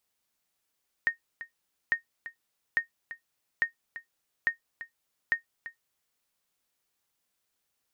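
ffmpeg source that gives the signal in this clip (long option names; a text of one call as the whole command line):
ffmpeg -f lavfi -i "aevalsrc='0.158*(sin(2*PI*1850*mod(t,0.85))*exp(-6.91*mod(t,0.85)/0.12)+0.188*sin(2*PI*1850*max(mod(t,0.85)-0.34,0))*exp(-6.91*max(mod(t,0.85)-0.34,0)/0.12))':duration=5.1:sample_rate=44100" out.wav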